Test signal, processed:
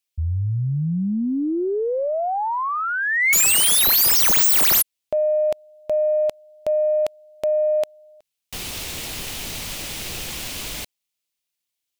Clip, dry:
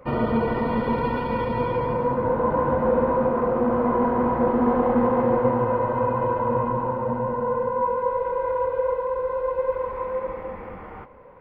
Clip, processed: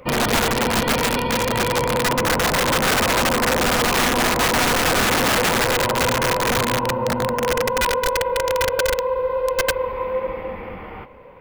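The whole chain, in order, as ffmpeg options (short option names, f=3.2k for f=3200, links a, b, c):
-af "highshelf=f=2k:t=q:w=1.5:g=7,aeval=exprs='(mod(7.5*val(0)+1,2)-1)/7.5':c=same,aeval=exprs='0.133*(cos(1*acos(clip(val(0)/0.133,-1,1)))-cos(1*PI/2))+0.00422*(cos(2*acos(clip(val(0)/0.133,-1,1)))-cos(2*PI/2))+0.00106*(cos(3*acos(clip(val(0)/0.133,-1,1)))-cos(3*PI/2))+0.00188*(cos(4*acos(clip(val(0)/0.133,-1,1)))-cos(4*PI/2))':c=same,volume=4.5dB"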